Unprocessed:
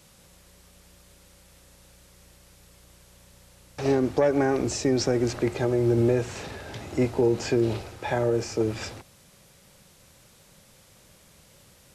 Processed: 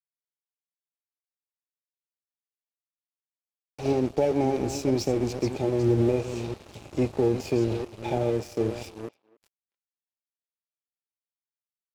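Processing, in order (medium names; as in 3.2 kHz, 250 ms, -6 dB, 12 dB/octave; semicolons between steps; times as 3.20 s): chunks repeated in reverse 327 ms, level -9 dB; elliptic band-stop 860–2300 Hz; treble shelf 8.2 kHz -8.5 dB; crossover distortion -39 dBFS; speakerphone echo 280 ms, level -23 dB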